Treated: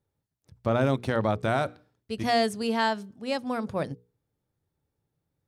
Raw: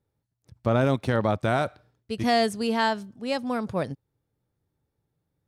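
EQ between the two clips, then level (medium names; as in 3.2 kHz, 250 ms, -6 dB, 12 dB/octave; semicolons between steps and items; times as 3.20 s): hum notches 60/120/180/240/300/360/420/480 Hz; -1.5 dB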